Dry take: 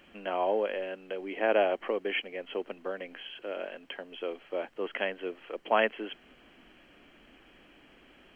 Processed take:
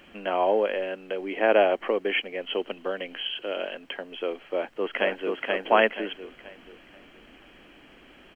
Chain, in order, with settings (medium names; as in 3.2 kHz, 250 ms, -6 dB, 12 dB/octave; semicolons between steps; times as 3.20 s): 2.41–3.75 s: peaking EQ 3 kHz +9 dB 0.28 oct; 4.45–5.40 s: echo throw 480 ms, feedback 35%, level -2 dB; trim +5.5 dB